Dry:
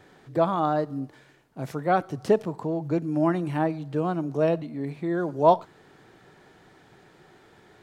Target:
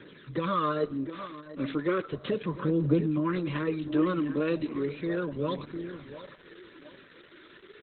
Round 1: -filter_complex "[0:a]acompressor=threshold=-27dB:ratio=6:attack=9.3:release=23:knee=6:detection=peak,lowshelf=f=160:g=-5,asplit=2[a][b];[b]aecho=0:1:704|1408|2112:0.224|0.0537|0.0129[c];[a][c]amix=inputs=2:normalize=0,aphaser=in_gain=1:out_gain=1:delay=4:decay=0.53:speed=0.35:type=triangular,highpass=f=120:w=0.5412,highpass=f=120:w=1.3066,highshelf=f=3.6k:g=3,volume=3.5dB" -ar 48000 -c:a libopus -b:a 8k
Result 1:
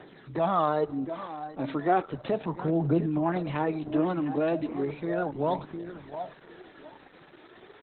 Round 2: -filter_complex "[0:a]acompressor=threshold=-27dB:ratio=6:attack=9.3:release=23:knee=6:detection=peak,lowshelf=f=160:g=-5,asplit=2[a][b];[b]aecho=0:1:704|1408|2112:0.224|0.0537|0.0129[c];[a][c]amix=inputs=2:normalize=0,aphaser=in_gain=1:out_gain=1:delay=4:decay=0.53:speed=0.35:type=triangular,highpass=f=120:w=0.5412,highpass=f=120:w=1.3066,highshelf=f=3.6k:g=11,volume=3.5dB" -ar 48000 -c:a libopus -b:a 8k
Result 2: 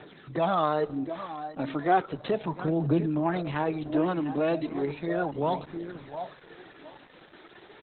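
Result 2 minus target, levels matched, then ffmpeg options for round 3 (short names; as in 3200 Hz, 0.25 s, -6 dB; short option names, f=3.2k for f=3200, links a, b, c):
1000 Hz band +5.0 dB
-filter_complex "[0:a]acompressor=threshold=-27dB:ratio=6:attack=9.3:release=23:knee=6:detection=peak,asuperstop=centerf=770:order=20:qfactor=2.1,lowshelf=f=160:g=-5,asplit=2[a][b];[b]aecho=0:1:704|1408|2112:0.224|0.0537|0.0129[c];[a][c]amix=inputs=2:normalize=0,aphaser=in_gain=1:out_gain=1:delay=4:decay=0.53:speed=0.35:type=triangular,highpass=f=120:w=0.5412,highpass=f=120:w=1.3066,highshelf=f=3.6k:g=11,volume=3.5dB" -ar 48000 -c:a libopus -b:a 8k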